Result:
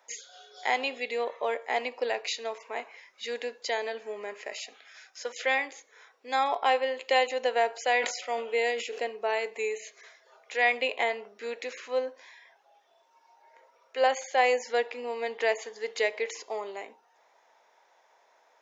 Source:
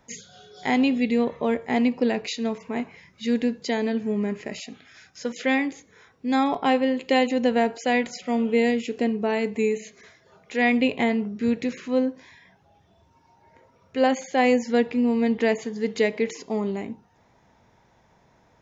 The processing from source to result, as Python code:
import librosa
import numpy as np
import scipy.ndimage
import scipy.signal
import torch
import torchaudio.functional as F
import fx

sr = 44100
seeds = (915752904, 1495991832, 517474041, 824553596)

y = scipy.signal.sosfilt(scipy.signal.butter(4, 510.0, 'highpass', fs=sr, output='sos'), x)
y = fx.sustainer(y, sr, db_per_s=79.0, at=(7.83, 8.99))
y = F.gain(torch.from_numpy(y), -1.0).numpy()